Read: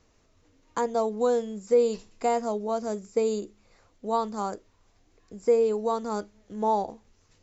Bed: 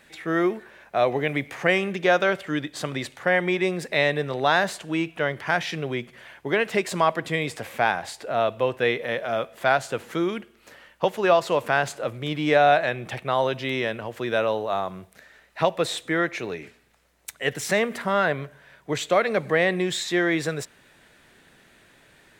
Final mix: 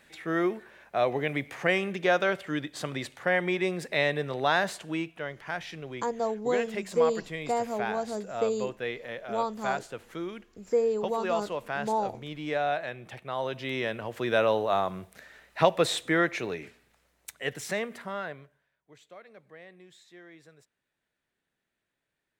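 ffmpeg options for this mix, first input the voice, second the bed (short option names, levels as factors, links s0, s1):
-filter_complex "[0:a]adelay=5250,volume=0.668[s0];[1:a]volume=2.11,afade=t=out:st=4.86:d=0.35:silence=0.473151,afade=t=in:st=13.28:d=1.27:silence=0.281838,afade=t=out:st=15.89:d=2.82:silence=0.0375837[s1];[s0][s1]amix=inputs=2:normalize=0"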